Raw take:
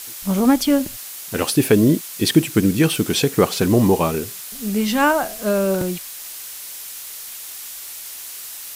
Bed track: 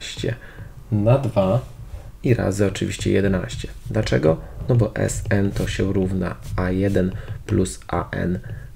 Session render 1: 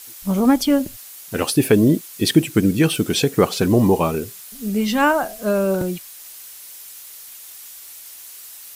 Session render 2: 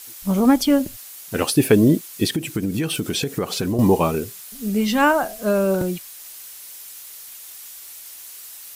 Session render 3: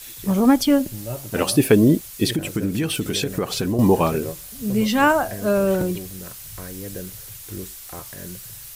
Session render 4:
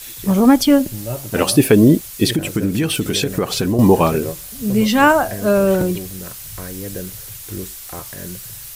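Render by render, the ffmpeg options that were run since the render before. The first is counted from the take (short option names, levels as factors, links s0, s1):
-af "afftdn=nr=7:nf=-34"
-filter_complex "[0:a]asettb=1/sr,asplit=3[s0][s1][s2];[s0]atrim=end=2.254[s3];[s1]atrim=start=2.25:end=3.79,asetpts=PTS-STARTPTS,afade=t=in:d=0.004:c=qsin,afade=t=out:st=1.536:d=0.004:c=qsin,acompressor=threshold=0.112:ratio=6:attack=3.2:release=140:knee=1:detection=peak[s4];[s2]atrim=start=3.786[s5];[s3][s4]acrossfade=d=0.004:c1=hsin:c2=qsin[s6];[s6][s5]acrossfade=d=0.004:c1=qsin:c2=hsin"
-filter_complex "[1:a]volume=0.178[s0];[0:a][s0]amix=inputs=2:normalize=0"
-af "volume=1.68,alimiter=limit=0.891:level=0:latency=1"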